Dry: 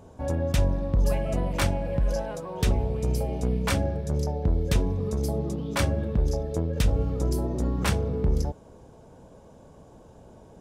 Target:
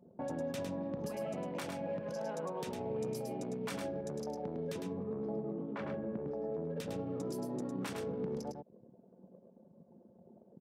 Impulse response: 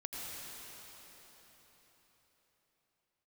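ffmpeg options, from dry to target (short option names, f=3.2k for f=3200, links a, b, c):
-filter_complex "[0:a]asettb=1/sr,asplit=3[a][b][c];[a]atrim=end=4.974[d];[b]atrim=start=4.97:end=6.7,asetpts=PTS-STARTPTS,afade=t=in:d=0.004:c=qsin,afade=t=out:st=1.726:d=0.004:c=qsin,lowpass=1.8k[e];[c]atrim=start=6.696[f];[d][e]acrossfade=d=0.004:c1=hsin:c2=qsin[g];[g][f]acrossfade=d=0.004:c1=qsin:c2=hsin,anlmdn=1,highpass=f=160:w=0.5412,highpass=f=160:w=1.3066,acompressor=threshold=-49dB:ratio=2,alimiter=level_in=15.5dB:limit=-24dB:level=0:latency=1:release=254,volume=-15.5dB,aecho=1:1:105:0.562,volume=8dB"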